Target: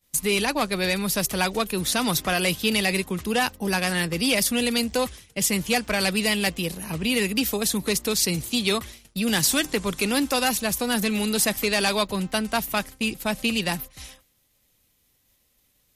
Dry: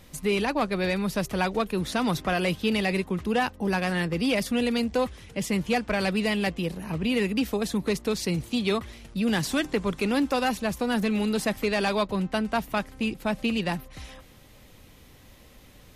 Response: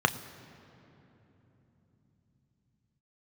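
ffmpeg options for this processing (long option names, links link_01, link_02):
-af "crystalizer=i=4:c=0,agate=range=-33dB:threshold=-32dB:ratio=3:detection=peak"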